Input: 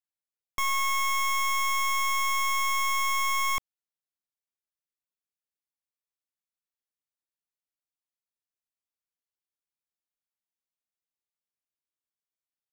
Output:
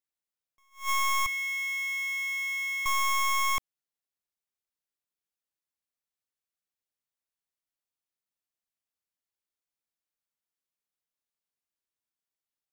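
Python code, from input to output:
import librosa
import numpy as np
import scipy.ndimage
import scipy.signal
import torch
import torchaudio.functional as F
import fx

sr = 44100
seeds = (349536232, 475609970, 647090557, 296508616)

y = fx.ladder_highpass(x, sr, hz=1900.0, resonance_pct=65, at=(1.26, 2.86))
y = fx.attack_slew(y, sr, db_per_s=210.0)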